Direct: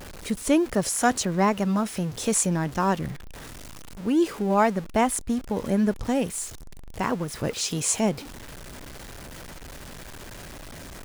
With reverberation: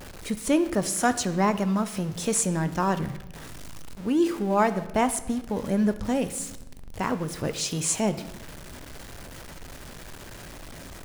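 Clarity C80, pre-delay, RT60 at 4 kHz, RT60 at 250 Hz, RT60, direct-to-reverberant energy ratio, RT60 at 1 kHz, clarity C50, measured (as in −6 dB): 15.5 dB, 11 ms, 0.90 s, 1.7 s, 1.0 s, 11.0 dB, 0.95 s, 13.5 dB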